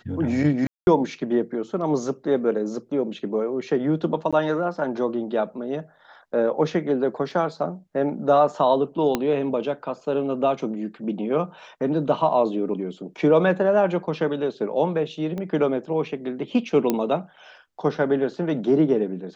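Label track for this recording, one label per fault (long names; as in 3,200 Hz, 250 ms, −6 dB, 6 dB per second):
0.670000	0.870000	drop-out 201 ms
4.310000	4.330000	drop-out 16 ms
7.310000	7.310000	drop-out 2.9 ms
9.150000	9.150000	click −8 dBFS
15.380000	15.380000	click −20 dBFS
16.900000	16.900000	click −8 dBFS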